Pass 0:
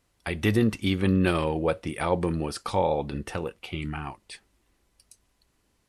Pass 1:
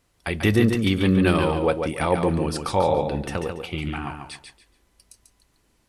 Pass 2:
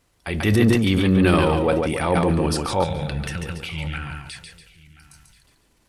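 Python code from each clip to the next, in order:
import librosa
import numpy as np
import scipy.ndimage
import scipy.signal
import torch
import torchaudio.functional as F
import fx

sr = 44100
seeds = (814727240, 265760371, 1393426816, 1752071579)

y1 = fx.echo_feedback(x, sr, ms=142, feedback_pct=25, wet_db=-6)
y1 = y1 * librosa.db_to_amplitude(3.5)
y2 = fx.transient(y1, sr, attack_db=-5, sustain_db=8)
y2 = fx.spec_box(y2, sr, start_s=2.84, length_s=2.59, low_hz=200.0, high_hz=1300.0, gain_db=-13)
y2 = y2 + 10.0 ** (-21.5 / 20.0) * np.pad(y2, (int(1033 * sr / 1000.0), 0))[:len(y2)]
y2 = y2 * librosa.db_to_amplitude(2.0)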